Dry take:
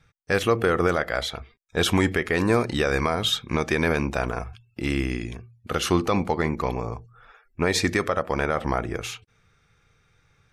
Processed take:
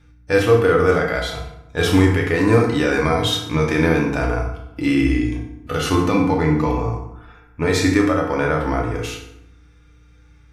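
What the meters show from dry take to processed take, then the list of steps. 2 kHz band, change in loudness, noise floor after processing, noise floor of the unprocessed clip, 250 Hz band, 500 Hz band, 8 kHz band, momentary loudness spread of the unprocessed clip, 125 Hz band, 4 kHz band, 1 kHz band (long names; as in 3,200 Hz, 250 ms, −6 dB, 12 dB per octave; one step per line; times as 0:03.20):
+4.0 dB, +6.0 dB, −50 dBFS, −65 dBFS, +8.0 dB, +6.5 dB, +1.5 dB, 11 LU, +8.0 dB, +2.0 dB, +4.0 dB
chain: mains hum 60 Hz, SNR 34 dB
feedback delay network reverb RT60 0.83 s, low-frequency decay 1.3×, high-frequency decay 0.65×, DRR 1 dB
harmonic and percussive parts rebalanced harmonic +9 dB
level −4.5 dB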